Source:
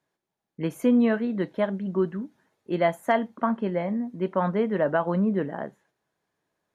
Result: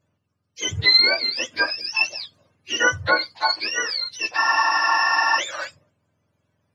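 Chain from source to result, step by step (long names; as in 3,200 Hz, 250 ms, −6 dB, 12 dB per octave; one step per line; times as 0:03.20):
frequency axis turned over on the octave scale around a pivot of 1,000 Hz
frozen spectrum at 0:04.38, 1.00 s
level +7.5 dB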